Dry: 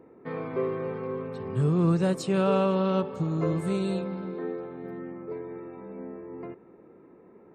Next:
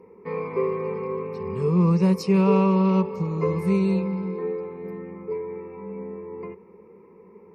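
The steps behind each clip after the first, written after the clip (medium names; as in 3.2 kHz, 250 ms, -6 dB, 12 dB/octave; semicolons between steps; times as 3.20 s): rippled EQ curve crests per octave 0.84, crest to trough 16 dB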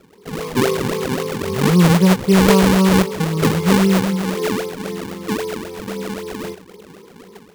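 level rider gain up to 8 dB; decimation with a swept rate 39×, swing 160% 3.8 Hz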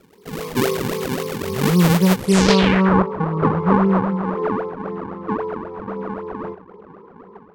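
low-pass sweep 16 kHz -> 1.1 kHz, 2.15–2.96 s; trim -2.5 dB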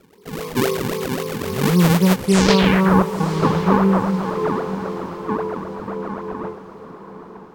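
echo that smears into a reverb 944 ms, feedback 43%, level -13 dB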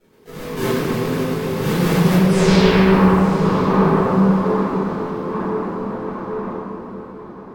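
reverberation RT60 2.6 s, pre-delay 4 ms, DRR -14.5 dB; trim -14 dB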